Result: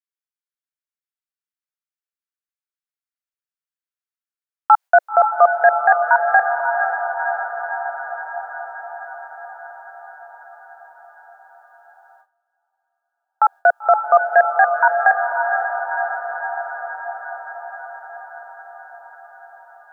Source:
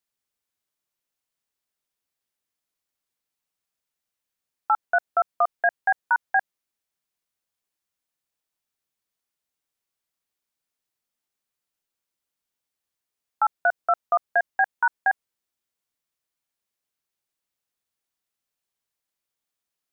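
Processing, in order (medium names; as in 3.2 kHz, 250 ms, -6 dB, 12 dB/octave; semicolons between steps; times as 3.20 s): high-pass sweep 1.4 kHz -> 520 Hz, 4.44–5.09 s; echo that smears into a reverb 524 ms, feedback 70%, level -6 dB; gate with hold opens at -45 dBFS; trim +4.5 dB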